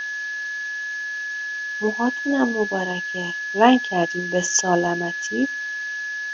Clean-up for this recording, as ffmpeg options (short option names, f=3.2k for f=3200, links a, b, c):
-af "adeclick=t=4,bandreject=f=1.7k:w=30,afftdn=nr=30:nf=-29"